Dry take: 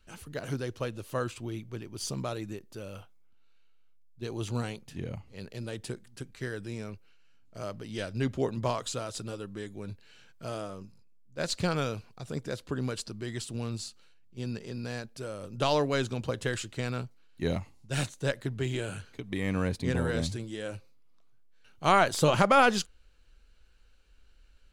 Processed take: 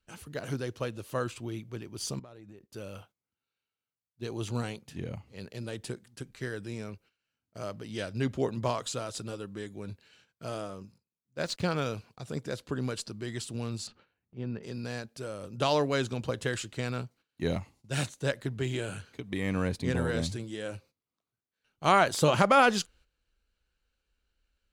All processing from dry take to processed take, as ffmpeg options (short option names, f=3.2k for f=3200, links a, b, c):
-filter_complex "[0:a]asettb=1/sr,asplit=3[a][b][c];[a]atrim=end=2.194[d];[b]atrim=start=2.19:end=2.7,asetpts=PTS-STARTPTS,afade=t=in:d=0.004:c=qsin,afade=t=out:st=0.506:d=0.004:c=qsin,equalizer=f=11k:t=o:w=2.6:g=-10,acompressor=threshold=-45dB:ratio=10:attack=3.2:release=140:knee=1:detection=peak[e];[c]atrim=start=2.696[f];[d][e]acrossfade=d=0.004:c1=hsin:c2=qsin[g];[g][f]acrossfade=d=0.004:c1=qsin:c2=hsin,asettb=1/sr,asplit=3[h][i][j];[h]atrim=end=11.434[k];[i]atrim=start=11.43:end=11.86,asetpts=PTS-STARTPTS,afade=t=in:d=0.004:c=qsin,afade=t=out:st=0.426:d=0.004:c=qsin,highshelf=f=9.1k:g=-10,bandreject=f=7.5k:w=29,aeval=exprs='sgn(val(0))*max(abs(val(0))-0.00282,0)':c=same[l];[j]atrim=start=11.856[m];[k][l]acrossfade=d=0.004:c1=hsin:c2=qsin[n];[n][m]acrossfade=d=0.004:c1=qsin:c2=hsin,asettb=1/sr,asplit=3[o][p][q];[o]atrim=end=13.874[r];[p]atrim=start=13.87:end=14.63,asetpts=PTS-STARTPTS,afade=t=in:d=0.004:c=qsin,afade=t=out:st=0.756:d=0.004:c=qsin,lowpass=1.9k,acompressor=mode=upward:threshold=-40dB:ratio=2.5:attack=3.2:release=140:knee=2.83:detection=peak[s];[q]atrim=start=14.626[t];[r][s]acrossfade=d=0.004:c1=hsin:c2=qsin[u];[u][t]acrossfade=d=0.004:c1=qsin:c2=hsin,highpass=f=53:p=1,agate=range=-12dB:threshold=-57dB:ratio=16:detection=peak"